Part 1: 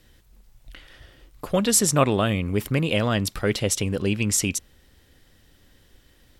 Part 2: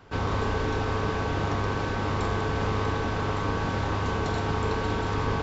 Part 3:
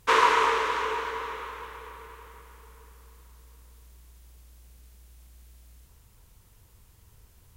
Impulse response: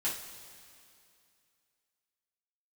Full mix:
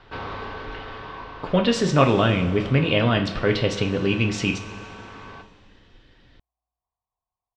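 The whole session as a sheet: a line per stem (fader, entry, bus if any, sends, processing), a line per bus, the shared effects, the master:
-1.0 dB, 0.00 s, send -4.5 dB, dry
+2.5 dB, 0.00 s, send -21.5 dB, low shelf 320 Hz -11.5 dB; soft clip -25.5 dBFS, distortion -18 dB; auto duck -13 dB, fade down 1.55 s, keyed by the first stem
-11.0 dB, 0.95 s, no send, vocal tract filter a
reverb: on, pre-delay 3 ms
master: LPF 4300 Hz 24 dB/oct

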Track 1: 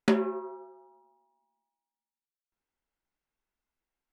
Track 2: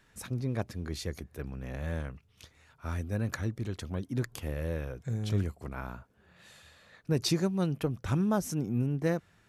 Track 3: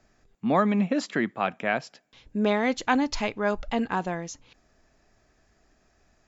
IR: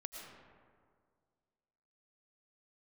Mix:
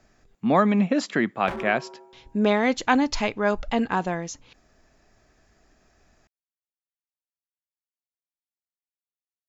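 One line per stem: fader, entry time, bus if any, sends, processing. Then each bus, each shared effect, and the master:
-1.0 dB, 1.40 s, no send, Chebyshev low-pass 1100 Hz, order 2; low shelf 110 Hz -11 dB; wavefolder -26.5 dBFS
off
+3.0 dB, 0.00 s, no send, dry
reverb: off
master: dry

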